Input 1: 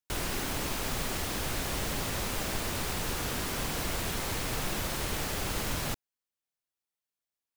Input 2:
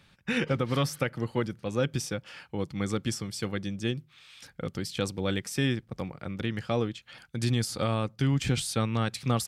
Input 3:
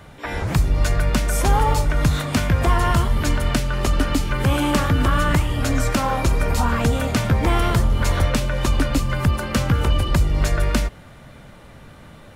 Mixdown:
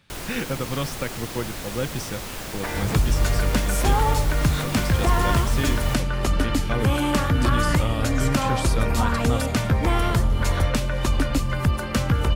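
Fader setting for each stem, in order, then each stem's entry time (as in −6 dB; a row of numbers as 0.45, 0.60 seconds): −0.5, −0.5, −2.5 decibels; 0.00, 0.00, 2.40 seconds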